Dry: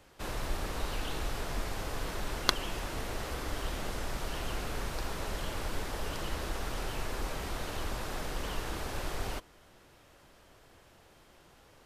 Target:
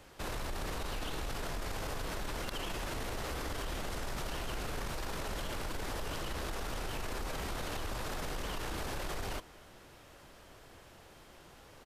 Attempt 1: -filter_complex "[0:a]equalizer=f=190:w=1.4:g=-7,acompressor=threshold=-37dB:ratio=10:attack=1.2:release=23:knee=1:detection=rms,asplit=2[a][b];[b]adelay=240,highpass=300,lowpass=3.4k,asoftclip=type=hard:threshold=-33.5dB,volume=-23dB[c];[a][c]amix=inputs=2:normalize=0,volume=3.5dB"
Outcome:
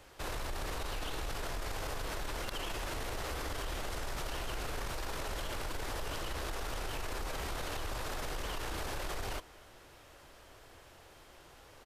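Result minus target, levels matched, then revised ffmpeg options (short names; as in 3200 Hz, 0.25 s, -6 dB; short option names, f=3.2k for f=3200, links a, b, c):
250 Hz band -3.0 dB
-filter_complex "[0:a]acompressor=threshold=-37dB:ratio=10:attack=1.2:release=23:knee=1:detection=rms,asplit=2[a][b];[b]adelay=240,highpass=300,lowpass=3.4k,asoftclip=type=hard:threshold=-33.5dB,volume=-23dB[c];[a][c]amix=inputs=2:normalize=0,volume=3.5dB"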